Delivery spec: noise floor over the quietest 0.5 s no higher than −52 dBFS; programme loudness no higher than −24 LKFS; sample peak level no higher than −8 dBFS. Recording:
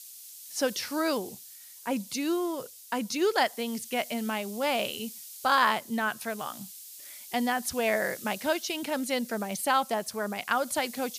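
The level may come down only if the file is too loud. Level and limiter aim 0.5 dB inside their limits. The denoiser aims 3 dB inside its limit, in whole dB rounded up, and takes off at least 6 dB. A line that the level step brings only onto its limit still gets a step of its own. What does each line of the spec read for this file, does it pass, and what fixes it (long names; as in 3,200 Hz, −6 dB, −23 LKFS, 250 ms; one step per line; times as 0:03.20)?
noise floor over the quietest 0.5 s −48 dBFS: out of spec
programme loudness −29.5 LKFS: in spec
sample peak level −9.5 dBFS: in spec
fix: broadband denoise 7 dB, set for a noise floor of −48 dBFS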